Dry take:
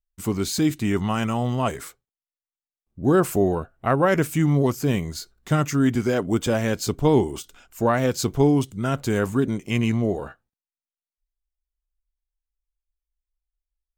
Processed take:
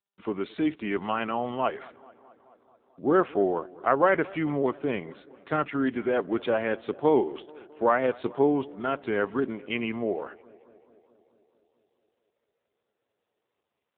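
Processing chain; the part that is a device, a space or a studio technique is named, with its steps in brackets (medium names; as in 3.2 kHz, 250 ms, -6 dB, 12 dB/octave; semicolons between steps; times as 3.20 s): 1.74–3.13 s: bass shelf 160 Hz +2.5 dB; tape echo 217 ms, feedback 76%, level -21.5 dB, low-pass 2.5 kHz; telephone (band-pass 370–3500 Hz; AMR-NB 7.4 kbps 8 kHz)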